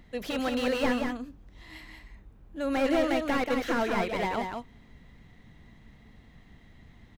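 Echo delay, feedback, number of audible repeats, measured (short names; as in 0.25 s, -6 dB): 0.182 s, no steady repeat, 1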